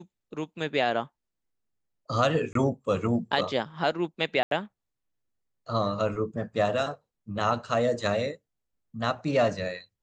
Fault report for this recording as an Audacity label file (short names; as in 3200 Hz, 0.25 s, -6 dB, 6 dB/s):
2.530000	2.550000	gap 23 ms
4.430000	4.510000	gap 82 ms